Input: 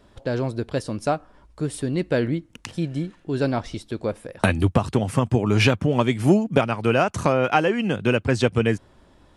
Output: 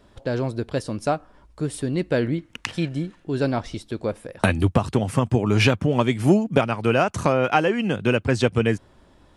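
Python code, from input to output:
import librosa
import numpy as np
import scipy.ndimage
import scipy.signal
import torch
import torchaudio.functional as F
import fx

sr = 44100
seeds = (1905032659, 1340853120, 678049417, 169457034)

y = fx.peak_eq(x, sr, hz=1900.0, db=9.5, octaves=2.6, at=(2.38, 2.89))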